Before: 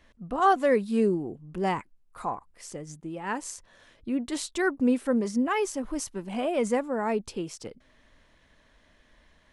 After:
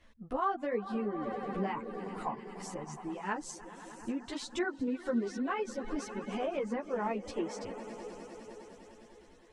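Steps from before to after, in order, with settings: swelling echo 0.101 s, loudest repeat 5, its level -17.5 dB; reverb removal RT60 0.72 s; compressor 4:1, threshold -27 dBFS, peak gain reduction 9.5 dB; treble ducked by the level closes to 2900 Hz, closed at -26 dBFS; ensemble effect

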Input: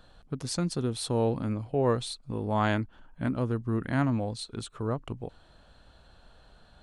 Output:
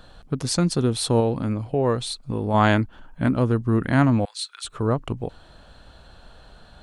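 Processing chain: 1.2–2.54 compressor 1.5:1, threshold -34 dBFS, peak gain reduction 5 dB; 4.25–4.65 HPF 1300 Hz 24 dB/oct; gain +8.5 dB

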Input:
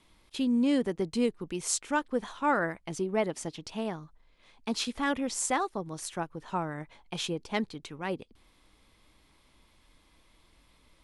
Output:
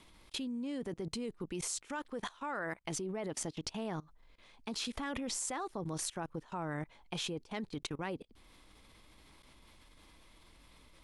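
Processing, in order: 1.88–2.95 low shelf 440 Hz -6 dB; level quantiser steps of 22 dB; gain +6 dB

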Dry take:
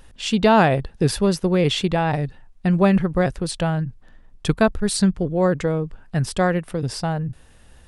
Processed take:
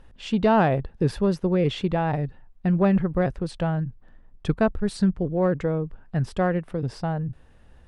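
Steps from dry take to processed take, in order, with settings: LPF 1500 Hz 6 dB/oct; in parallel at -7 dB: sine folder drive 3 dB, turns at -4.5 dBFS; on the sum: gain -8.5 dB

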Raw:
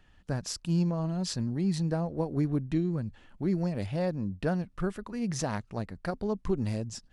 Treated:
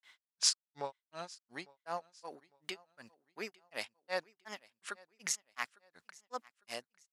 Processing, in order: HPF 1200 Hz 12 dB/oct; grains 0.187 s, grains 2.7/s, pitch spread up and down by 3 st; feedback echo 0.853 s, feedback 38%, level -24 dB; gain +10 dB

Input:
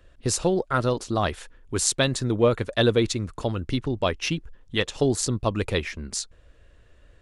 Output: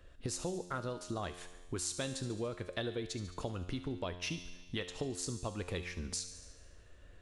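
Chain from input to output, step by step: compressor 6:1, threshold -33 dBFS, peak gain reduction 17 dB; resonator 89 Hz, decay 1.3 s, harmonics all, mix 70%; thin delay 72 ms, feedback 65%, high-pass 2900 Hz, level -12 dB; gain +6 dB

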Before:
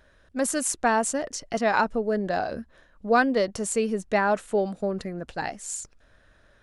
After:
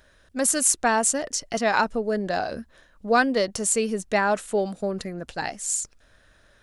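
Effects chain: high shelf 3200 Hz +8.5 dB

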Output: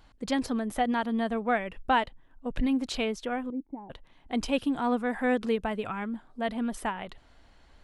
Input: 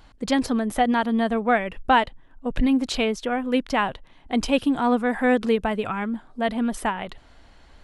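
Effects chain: 3.5–3.9 vocal tract filter u; gain -6.5 dB

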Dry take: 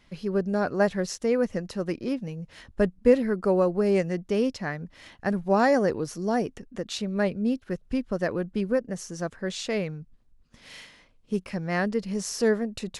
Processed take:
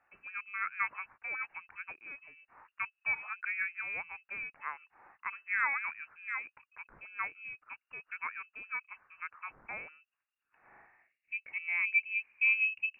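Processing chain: high shelf 2200 Hz -10.5 dB; band-pass sweep 1400 Hz -> 210 Hz, 10.49–12.86; inverted band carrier 2800 Hz; gain +1.5 dB

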